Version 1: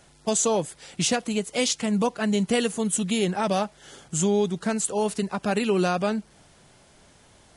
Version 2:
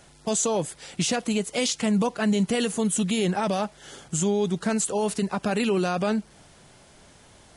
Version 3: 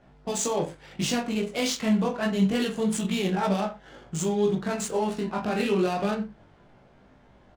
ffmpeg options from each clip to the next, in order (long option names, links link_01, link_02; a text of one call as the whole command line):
ffmpeg -i in.wav -af "alimiter=limit=-18.5dB:level=0:latency=1:release=21,volume=2.5dB" out.wav
ffmpeg -i in.wav -af "flanger=delay=15.5:depth=7.5:speed=0.28,aecho=1:1:20|42|66.2|92.82|122.1:0.631|0.398|0.251|0.158|0.1,adynamicsmooth=sensitivity=7.5:basefreq=1700" out.wav